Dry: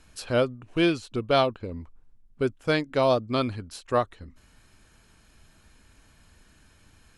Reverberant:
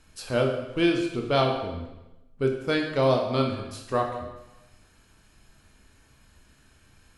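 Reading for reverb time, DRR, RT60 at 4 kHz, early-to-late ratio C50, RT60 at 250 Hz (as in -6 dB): 1.0 s, 1.5 dB, 0.90 s, 5.0 dB, 0.95 s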